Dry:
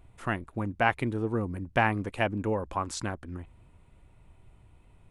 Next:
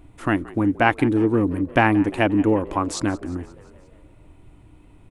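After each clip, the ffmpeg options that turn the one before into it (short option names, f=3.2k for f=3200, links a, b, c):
-filter_complex "[0:a]equalizer=f=300:w=4.3:g=14,asplit=6[a][b][c][d][e][f];[b]adelay=176,afreqshift=66,volume=-20.5dB[g];[c]adelay=352,afreqshift=132,volume=-24.9dB[h];[d]adelay=528,afreqshift=198,volume=-29.4dB[i];[e]adelay=704,afreqshift=264,volume=-33.8dB[j];[f]adelay=880,afreqshift=330,volume=-38.2dB[k];[a][g][h][i][j][k]amix=inputs=6:normalize=0,volume=6.5dB"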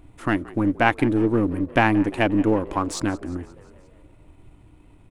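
-af "aeval=exprs='if(lt(val(0),0),0.708*val(0),val(0))':c=same"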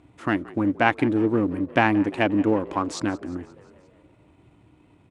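-af "highpass=110,lowpass=6.9k,volume=-1dB"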